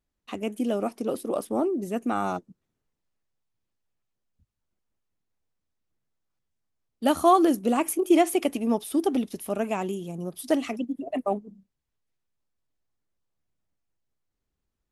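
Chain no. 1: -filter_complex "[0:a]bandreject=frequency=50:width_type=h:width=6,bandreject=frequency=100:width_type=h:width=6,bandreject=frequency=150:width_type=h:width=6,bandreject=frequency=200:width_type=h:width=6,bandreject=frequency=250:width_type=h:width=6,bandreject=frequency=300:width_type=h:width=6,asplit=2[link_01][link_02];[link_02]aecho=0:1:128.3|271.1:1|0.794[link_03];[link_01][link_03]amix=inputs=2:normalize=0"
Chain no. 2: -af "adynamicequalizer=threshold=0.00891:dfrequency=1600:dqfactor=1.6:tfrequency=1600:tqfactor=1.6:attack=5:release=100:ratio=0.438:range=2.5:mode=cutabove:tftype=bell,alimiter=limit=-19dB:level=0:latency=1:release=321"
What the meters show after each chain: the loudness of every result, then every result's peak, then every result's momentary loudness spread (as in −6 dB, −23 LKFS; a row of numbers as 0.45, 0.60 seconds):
−22.0, −31.5 LKFS; −4.0, −19.0 dBFS; 14, 7 LU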